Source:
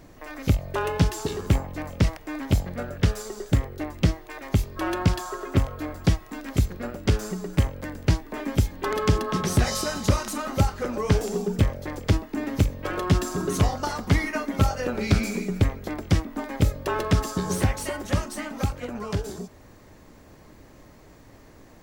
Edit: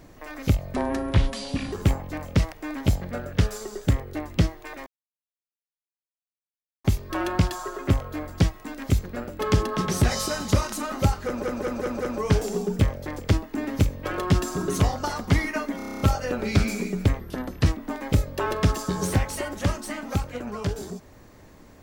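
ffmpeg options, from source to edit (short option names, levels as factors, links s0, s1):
-filter_complex "[0:a]asplit=19[s0][s1][s2][s3][s4][s5][s6][s7][s8][s9][s10][s11][s12][s13][s14][s15][s16][s17][s18];[s0]atrim=end=0.744[s19];[s1]atrim=start=0.74:end=1.37,asetpts=PTS-STARTPTS,asetrate=28224,aresample=44100[s20];[s2]atrim=start=1.366:end=4.51,asetpts=PTS-STARTPTS,afade=t=out:st=3.14:d=0.004:c=hsin,apad=pad_dur=1.98[s21];[s3]atrim=start=4.51:end=7.062,asetpts=PTS-STARTPTS,afade=t=in:d=0.004:c=hsin[s22];[s4]atrim=start=8.948:end=10.992[s23];[s5]atrim=start=10.798:end=10.992[s24];[s6]atrim=start=10.798:end=10.992[s25];[s7]atrim=start=10.798:end=10.992[s26];[s8]atrim=start=10.798:end=14.592[s27];[s9]atrim=start=14.558:end=14.592[s28];[s10]atrim=start=14.558:end=14.592[s29];[s11]atrim=start=14.558:end=14.592[s30];[s12]atrim=start=14.558:end=14.592[s31];[s13]atrim=start=14.558:end=14.592[s32];[s14]atrim=start=14.558:end=14.592[s33];[s15]atrim=start=14.558:end=14.592[s34];[s16]atrim=start=14.558:end=15.754[s35];[s17]atrim=start=15.75:end=16.14,asetpts=PTS-STARTPTS,asetrate=37044,aresample=44100[s36];[s18]atrim=start=16.136[s37];[s19][s20]acrossfade=d=0.004:c1=hsin:c2=hsin[s38];[s21][s22]concat=n=2:v=0:a=1[s39];[s38][s39]acrossfade=d=0.004:c1=hsin:c2=hsin[s40];[s40][s23]acrossfade=d=0.004:c1=hsin:c2=hsin[s41];[s41][s24]acrossfade=d=0.004:c1=hsin:c2=hsin[s42];[s42][s25]acrossfade=d=0.004:c1=hsin:c2=hsin[s43];[s43][s26]acrossfade=d=0.004:c1=hsin:c2=hsin[s44];[s44][s27]acrossfade=d=0.004:c1=hsin:c2=hsin[s45];[s45][s28]acrossfade=d=0.004:c1=hsin:c2=hsin[s46];[s46][s29]acrossfade=d=0.004:c1=hsin:c2=hsin[s47];[s47][s30]acrossfade=d=0.004:c1=hsin:c2=hsin[s48];[s48][s31]acrossfade=d=0.004:c1=hsin:c2=hsin[s49];[s49][s32]acrossfade=d=0.004:c1=hsin:c2=hsin[s50];[s50][s33]acrossfade=d=0.004:c1=hsin:c2=hsin[s51];[s51][s34]acrossfade=d=0.004:c1=hsin:c2=hsin[s52];[s52][s35]acrossfade=d=0.004:c1=hsin:c2=hsin[s53];[s53][s36]acrossfade=d=0.004:c1=hsin:c2=hsin[s54];[s54][s37]acrossfade=d=0.004:c1=hsin:c2=hsin"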